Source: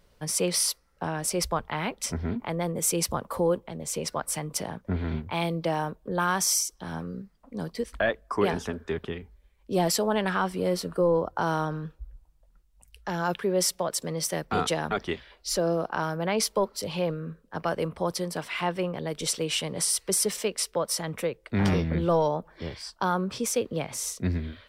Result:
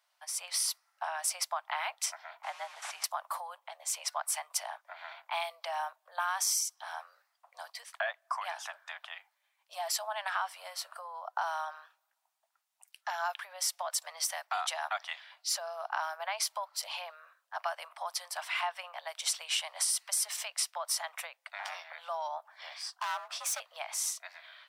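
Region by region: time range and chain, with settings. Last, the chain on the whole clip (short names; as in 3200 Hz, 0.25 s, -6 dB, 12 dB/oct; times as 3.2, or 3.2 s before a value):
2.43–3.04 delta modulation 64 kbps, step -33.5 dBFS + LPF 1900 Hz 6 dB/oct + frequency shift -79 Hz
22.71–23.6 overloaded stage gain 27.5 dB + frequency shift +82 Hz
whole clip: compressor, threshold -26 dBFS; steep high-pass 660 Hz 72 dB/oct; AGC gain up to 7 dB; gain -7.5 dB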